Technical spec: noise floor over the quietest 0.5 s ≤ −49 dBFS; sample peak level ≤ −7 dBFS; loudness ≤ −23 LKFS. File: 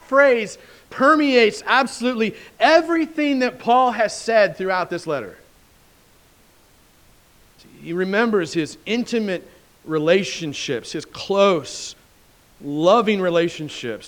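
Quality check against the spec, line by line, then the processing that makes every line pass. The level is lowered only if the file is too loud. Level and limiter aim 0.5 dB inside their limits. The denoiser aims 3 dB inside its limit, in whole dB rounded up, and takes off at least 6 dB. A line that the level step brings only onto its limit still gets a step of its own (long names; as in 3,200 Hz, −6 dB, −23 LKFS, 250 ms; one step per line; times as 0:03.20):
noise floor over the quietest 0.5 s −54 dBFS: in spec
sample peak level −2.5 dBFS: out of spec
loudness −19.0 LKFS: out of spec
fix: level −4.5 dB
brickwall limiter −7.5 dBFS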